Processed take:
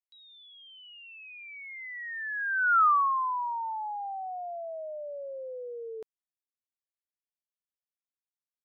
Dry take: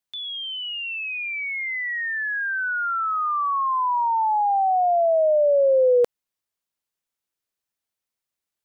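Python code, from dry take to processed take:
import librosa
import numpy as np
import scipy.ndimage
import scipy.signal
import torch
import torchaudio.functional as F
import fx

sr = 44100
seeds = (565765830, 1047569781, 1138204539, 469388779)

y = fx.doppler_pass(x, sr, speed_mps=34, closest_m=4.7, pass_at_s=2.82)
y = F.gain(torch.from_numpy(y), 3.5).numpy()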